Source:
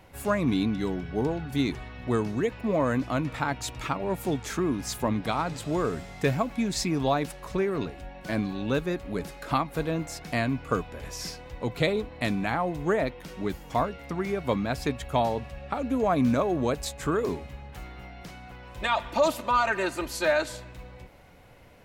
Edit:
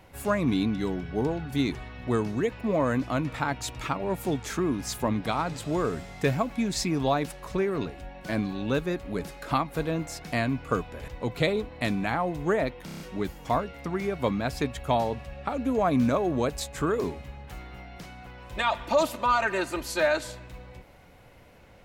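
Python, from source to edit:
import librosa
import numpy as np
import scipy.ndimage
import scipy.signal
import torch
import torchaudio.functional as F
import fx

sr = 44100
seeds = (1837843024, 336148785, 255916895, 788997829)

y = fx.edit(x, sr, fx.cut(start_s=11.08, length_s=0.4),
    fx.stutter(start_s=13.25, slice_s=0.03, count=6), tone=tone)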